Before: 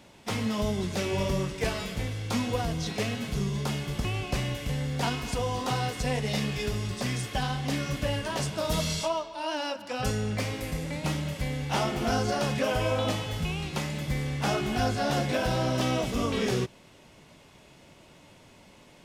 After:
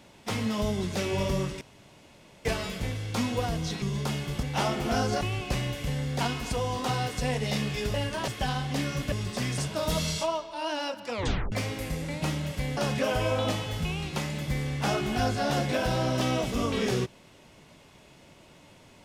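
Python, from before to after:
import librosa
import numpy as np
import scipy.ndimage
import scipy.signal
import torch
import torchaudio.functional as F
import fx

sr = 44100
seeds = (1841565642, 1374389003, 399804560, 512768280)

y = fx.edit(x, sr, fx.insert_room_tone(at_s=1.61, length_s=0.84),
    fx.cut(start_s=2.98, length_s=0.44),
    fx.swap(start_s=6.76, length_s=0.46, other_s=8.06, other_length_s=0.34),
    fx.tape_stop(start_s=9.92, length_s=0.42),
    fx.move(start_s=11.59, length_s=0.78, to_s=4.03), tone=tone)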